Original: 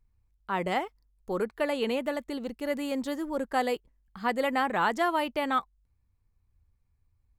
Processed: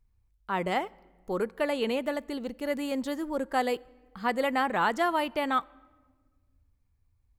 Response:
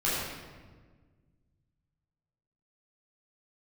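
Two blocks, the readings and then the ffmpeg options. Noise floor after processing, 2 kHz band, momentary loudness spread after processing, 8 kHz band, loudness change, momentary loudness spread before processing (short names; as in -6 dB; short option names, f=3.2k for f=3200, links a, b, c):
-71 dBFS, 0.0 dB, 8 LU, 0.0 dB, 0.0 dB, 8 LU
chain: -filter_complex "[0:a]asplit=2[a][b];[1:a]atrim=start_sample=2205[c];[b][c]afir=irnorm=-1:irlink=0,volume=-34.5dB[d];[a][d]amix=inputs=2:normalize=0"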